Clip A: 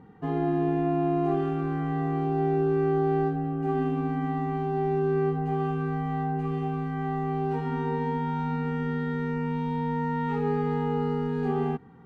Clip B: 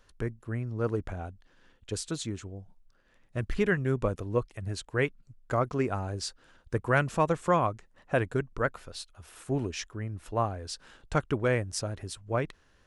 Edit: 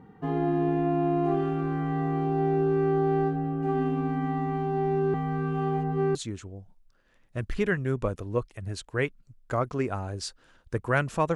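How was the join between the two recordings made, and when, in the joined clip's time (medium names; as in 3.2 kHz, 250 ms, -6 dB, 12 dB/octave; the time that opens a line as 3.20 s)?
clip A
5.14–6.15 s: reverse
6.15 s: go over to clip B from 2.15 s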